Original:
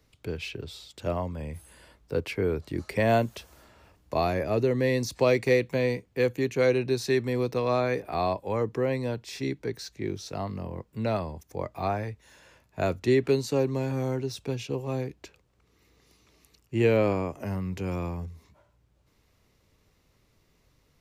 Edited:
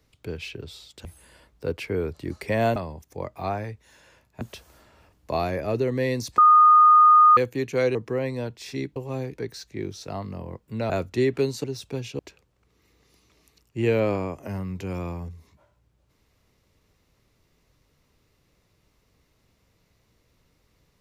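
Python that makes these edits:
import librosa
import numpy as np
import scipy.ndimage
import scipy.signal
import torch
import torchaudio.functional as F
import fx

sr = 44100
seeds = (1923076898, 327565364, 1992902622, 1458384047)

y = fx.edit(x, sr, fx.cut(start_s=1.05, length_s=0.48),
    fx.bleep(start_s=5.21, length_s=0.99, hz=1230.0, db=-10.5),
    fx.cut(start_s=6.78, length_s=1.84),
    fx.move(start_s=11.15, length_s=1.65, to_s=3.24),
    fx.cut(start_s=13.54, length_s=0.65),
    fx.move(start_s=14.74, length_s=0.42, to_s=9.63), tone=tone)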